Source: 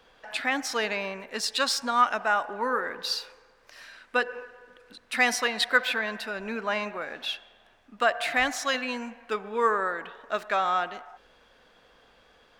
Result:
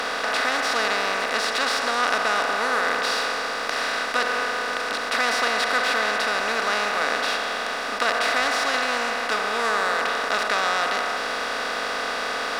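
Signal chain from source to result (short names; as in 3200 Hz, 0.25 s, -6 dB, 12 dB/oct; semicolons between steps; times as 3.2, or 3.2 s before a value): per-bin compression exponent 0.2; gain -7.5 dB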